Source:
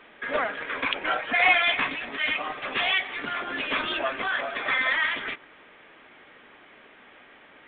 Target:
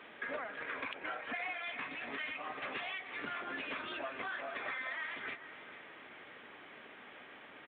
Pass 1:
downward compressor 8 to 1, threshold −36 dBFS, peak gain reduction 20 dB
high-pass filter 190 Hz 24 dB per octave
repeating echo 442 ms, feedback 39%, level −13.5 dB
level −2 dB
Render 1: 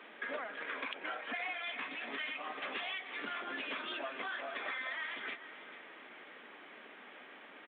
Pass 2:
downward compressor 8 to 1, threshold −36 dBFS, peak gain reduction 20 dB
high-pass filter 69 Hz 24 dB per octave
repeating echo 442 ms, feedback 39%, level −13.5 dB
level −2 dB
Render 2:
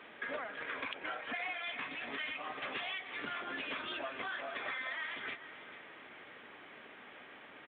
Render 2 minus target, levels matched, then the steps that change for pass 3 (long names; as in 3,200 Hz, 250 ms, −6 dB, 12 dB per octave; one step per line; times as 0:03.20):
4,000 Hz band +3.0 dB
add after downward compressor: dynamic equaliser 3,300 Hz, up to −5 dB, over −57 dBFS, Q 3.8